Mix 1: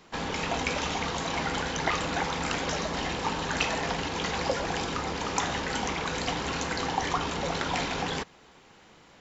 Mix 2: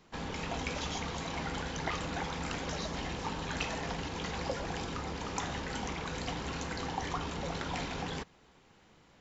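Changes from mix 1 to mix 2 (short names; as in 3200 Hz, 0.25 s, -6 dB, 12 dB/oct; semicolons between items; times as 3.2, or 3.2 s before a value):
background -8.5 dB; master: add low shelf 210 Hz +7.5 dB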